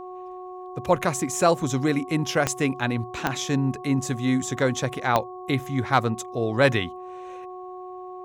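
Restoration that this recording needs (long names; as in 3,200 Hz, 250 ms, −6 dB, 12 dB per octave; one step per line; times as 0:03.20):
clipped peaks rebuilt −7.5 dBFS
click removal
hum removal 366.7 Hz, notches 3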